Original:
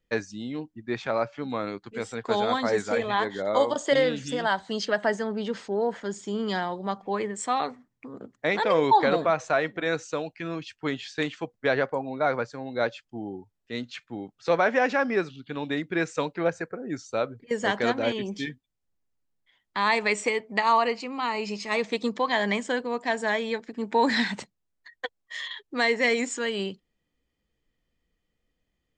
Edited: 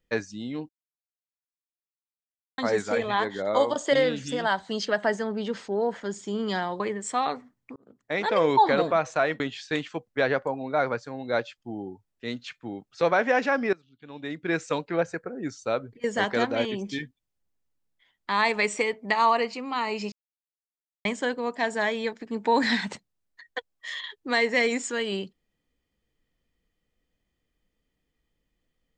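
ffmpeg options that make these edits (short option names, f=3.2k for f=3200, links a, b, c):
-filter_complex "[0:a]asplit=9[a][b][c][d][e][f][g][h][i];[a]atrim=end=0.69,asetpts=PTS-STARTPTS,afade=t=out:st=0.686:d=0.004:c=hsin[j];[b]atrim=start=0.69:end=2.58,asetpts=PTS-STARTPTS,volume=0[k];[c]atrim=start=2.58:end=6.802,asetpts=PTS-STARTPTS,afade=t=in:d=0.004:c=hsin[l];[d]atrim=start=7.138:end=8.1,asetpts=PTS-STARTPTS,afade=t=out:st=0.958:d=0.004:c=hsin[m];[e]atrim=start=8.1:end=9.742,asetpts=PTS-STARTPTS,afade=t=in:d=0.56[n];[f]atrim=start=10.868:end=15.2,asetpts=PTS-STARTPTS,afade=t=out:st=4.328:d=0.004:c=hsin:silence=0.0944061[o];[g]atrim=start=15.2:end=21.59,asetpts=PTS-STARTPTS,afade=t=in:d=0.8:c=qua:silence=0.0944061,afade=t=out:st=6.386:d=0.004:c=hsin[p];[h]atrim=start=21.59:end=22.52,asetpts=PTS-STARTPTS,volume=0[q];[i]atrim=start=22.52,asetpts=PTS-STARTPTS,afade=t=in:d=0.004:c=hsin[r];[j][k][l]concat=n=3:v=0:a=1[s];[m][n]concat=n=2:v=0:a=1[t];[s][t]acrossfade=d=0.004:c1=hsin:c2=hsin[u];[o][p][q][r]concat=n=4:v=0:a=1[v];[u][v]acrossfade=d=0.004:c1=hsin:c2=hsin"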